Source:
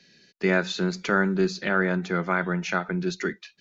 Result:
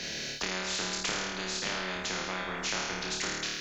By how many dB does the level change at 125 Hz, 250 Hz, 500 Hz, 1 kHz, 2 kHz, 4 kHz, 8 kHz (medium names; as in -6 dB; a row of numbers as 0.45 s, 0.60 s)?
-15.0 dB, -14.5 dB, -12.5 dB, -7.0 dB, -7.0 dB, +4.5 dB, no reading